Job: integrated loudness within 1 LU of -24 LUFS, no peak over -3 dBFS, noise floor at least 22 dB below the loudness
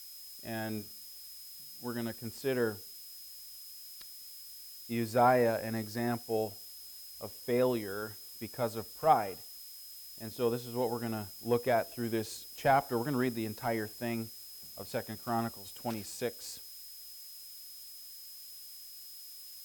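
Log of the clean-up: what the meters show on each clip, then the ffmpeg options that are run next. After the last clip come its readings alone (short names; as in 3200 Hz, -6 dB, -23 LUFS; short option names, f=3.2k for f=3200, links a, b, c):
steady tone 5100 Hz; tone level -51 dBFS; noise floor -49 dBFS; noise floor target -58 dBFS; loudness -35.5 LUFS; peak -12.0 dBFS; loudness target -24.0 LUFS
-> -af "bandreject=f=5.1k:w=30"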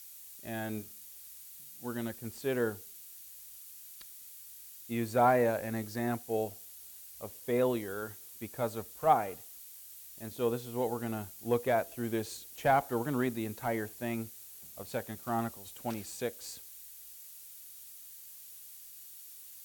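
steady tone none; noise floor -51 dBFS; noise floor target -56 dBFS
-> -af "afftdn=nr=6:nf=-51"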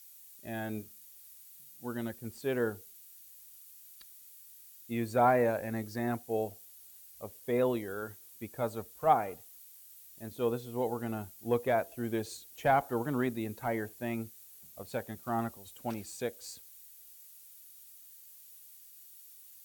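noise floor -55 dBFS; noise floor target -56 dBFS
-> -af "afftdn=nr=6:nf=-55"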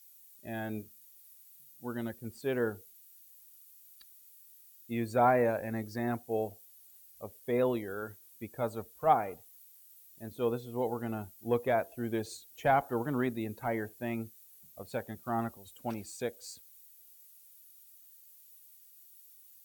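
noise floor -58 dBFS; loudness -34.0 LUFS; peak -12.0 dBFS; loudness target -24.0 LUFS
-> -af "volume=10dB,alimiter=limit=-3dB:level=0:latency=1"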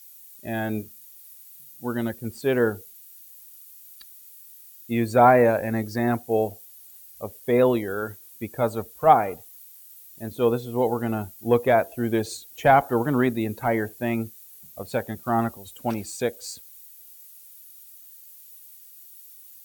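loudness -24.0 LUFS; peak -3.0 dBFS; noise floor -48 dBFS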